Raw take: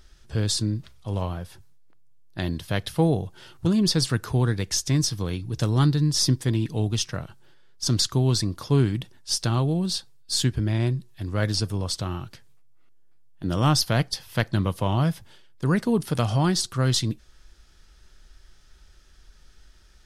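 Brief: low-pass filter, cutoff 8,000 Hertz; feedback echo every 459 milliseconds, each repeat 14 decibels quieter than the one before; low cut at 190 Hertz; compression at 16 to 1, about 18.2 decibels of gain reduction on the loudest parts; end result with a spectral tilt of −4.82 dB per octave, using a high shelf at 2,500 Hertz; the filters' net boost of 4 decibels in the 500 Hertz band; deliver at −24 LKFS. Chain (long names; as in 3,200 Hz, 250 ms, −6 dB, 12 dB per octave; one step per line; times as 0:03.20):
high-pass filter 190 Hz
low-pass filter 8,000 Hz
parametric band 500 Hz +5.5 dB
high-shelf EQ 2,500 Hz −7.5 dB
downward compressor 16 to 1, threshold −33 dBFS
repeating echo 459 ms, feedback 20%, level −14 dB
level +15 dB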